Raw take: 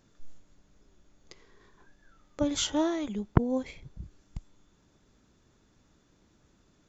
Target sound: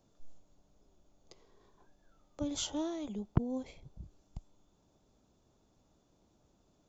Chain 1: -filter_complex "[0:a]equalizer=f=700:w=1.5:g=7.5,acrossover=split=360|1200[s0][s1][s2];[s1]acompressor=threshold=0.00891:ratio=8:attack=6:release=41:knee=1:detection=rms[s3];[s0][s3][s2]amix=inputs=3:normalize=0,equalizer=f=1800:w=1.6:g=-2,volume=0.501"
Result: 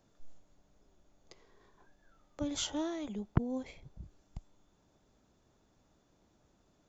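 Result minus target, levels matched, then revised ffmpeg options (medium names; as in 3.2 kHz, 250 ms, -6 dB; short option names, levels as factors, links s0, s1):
2 kHz band +5.0 dB
-filter_complex "[0:a]equalizer=f=700:w=1.5:g=7.5,acrossover=split=360|1200[s0][s1][s2];[s1]acompressor=threshold=0.00891:ratio=8:attack=6:release=41:knee=1:detection=rms[s3];[s0][s3][s2]amix=inputs=3:normalize=0,equalizer=f=1800:w=1.6:g=-9.5,volume=0.501"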